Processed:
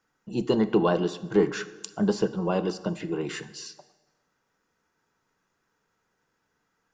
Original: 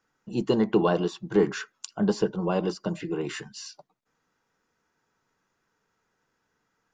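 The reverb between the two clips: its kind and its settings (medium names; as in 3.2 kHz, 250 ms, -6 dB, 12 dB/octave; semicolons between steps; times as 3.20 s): plate-style reverb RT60 1.3 s, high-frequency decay 0.75×, DRR 13 dB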